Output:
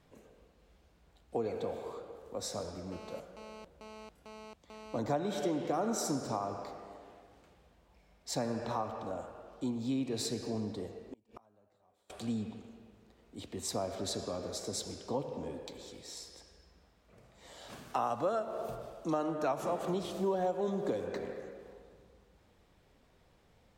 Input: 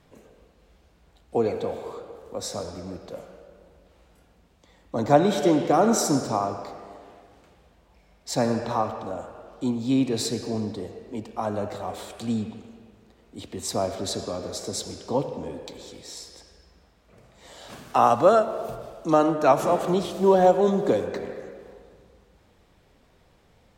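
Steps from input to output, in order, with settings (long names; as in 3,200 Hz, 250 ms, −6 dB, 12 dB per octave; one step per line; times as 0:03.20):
downward compressor 3 to 1, threshold −25 dBFS, peak gain reduction 11 dB
0:02.92–0:04.98: phone interference −43 dBFS
0:10.95–0:12.10: gate with flip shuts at −28 dBFS, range −31 dB
level −6.5 dB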